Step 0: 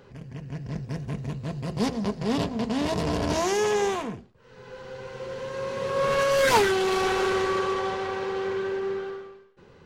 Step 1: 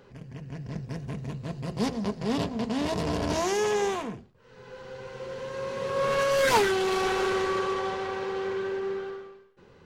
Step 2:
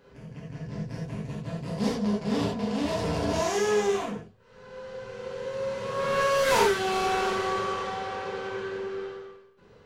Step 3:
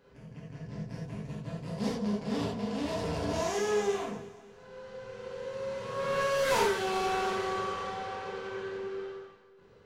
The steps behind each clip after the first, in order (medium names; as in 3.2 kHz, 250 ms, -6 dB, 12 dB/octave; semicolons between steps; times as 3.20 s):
hum notches 50/100/150 Hz; trim -2 dB
gated-style reverb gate 110 ms flat, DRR -4.5 dB; trim -5.5 dB
echo whose repeats swap between lows and highs 116 ms, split 1.3 kHz, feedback 67%, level -12.5 dB; trim -5 dB